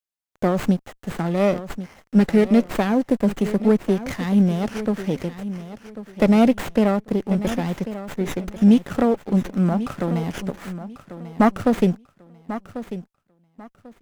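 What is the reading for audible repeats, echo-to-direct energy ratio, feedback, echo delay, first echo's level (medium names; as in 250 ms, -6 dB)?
2, -13.0 dB, 23%, 1093 ms, -13.0 dB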